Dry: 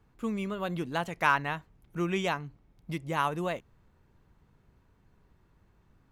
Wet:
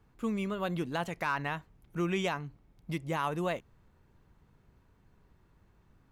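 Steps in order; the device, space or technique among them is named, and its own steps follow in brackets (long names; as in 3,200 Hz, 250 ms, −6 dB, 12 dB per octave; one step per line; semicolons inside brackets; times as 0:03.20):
soft clipper into limiter (soft clipping −13.5 dBFS, distortion −21 dB; brickwall limiter −21.5 dBFS, peak gain reduction 7 dB)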